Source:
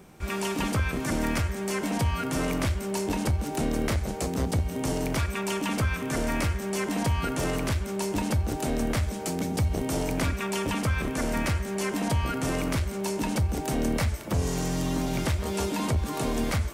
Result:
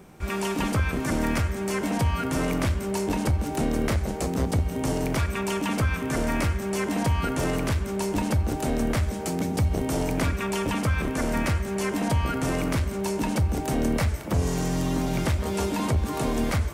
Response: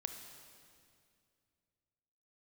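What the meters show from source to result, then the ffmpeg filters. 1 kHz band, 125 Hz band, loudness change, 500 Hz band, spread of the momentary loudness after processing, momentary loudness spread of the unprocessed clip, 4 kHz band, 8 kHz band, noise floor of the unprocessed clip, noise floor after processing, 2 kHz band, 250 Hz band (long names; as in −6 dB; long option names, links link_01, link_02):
+2.0 dB, +2.5 dB, +2.0 dB, +2.0 dB, 2 LU, 2 LU, 0.0 dB, −0.5 dB, −34 dBFS, −32 dBFS, +1.0 dB, +2.5 dB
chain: -filter_complex "[0:a]asplit=2[link_01][link_02];[link_02]lowpass=2900[link_03];[1:a]atrim=start_sample=2205,asetrate=33516,aresample=44100[link_04];[link_03][link_04]afir=irnorm=-1:irlink=0,volume=-9.5dB[link_05];[link_01][link_05]amix=inputs=2:normalize=0"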